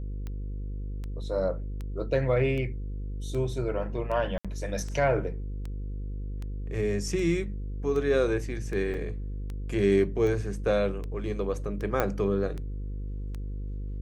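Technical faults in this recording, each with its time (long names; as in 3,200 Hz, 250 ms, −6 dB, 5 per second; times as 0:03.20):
mains buzz 50 Hz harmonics 10 −34 dBFS
scratch tick 78 rpm −25 dBFS
0:04.38–0:04.45: drop-out 66 ms
0:08.94: drop-out 3.7 ms
0:12.00: click −12 dBFS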